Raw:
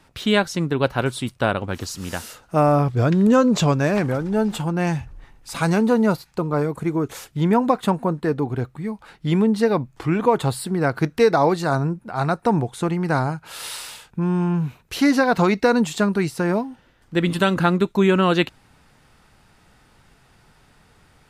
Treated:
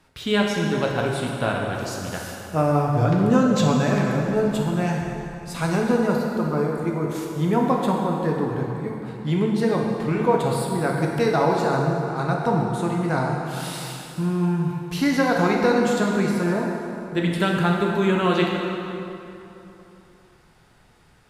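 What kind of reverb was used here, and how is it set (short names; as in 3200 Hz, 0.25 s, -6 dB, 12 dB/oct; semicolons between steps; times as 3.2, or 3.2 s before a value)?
plate-style reverb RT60 3 s, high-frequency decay 0.7×, DRR -1 dB; gain -5 dB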